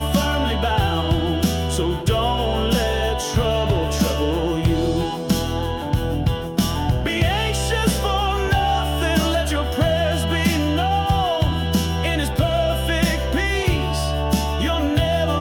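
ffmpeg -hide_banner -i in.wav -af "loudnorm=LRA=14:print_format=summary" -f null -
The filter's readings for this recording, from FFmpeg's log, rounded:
Input Integrated:    -20.5 LUFS
Input True Peak:      -7.2 dBTP
Input LRA:             1.2 LU
Input Threshold:     -30.5 LUFS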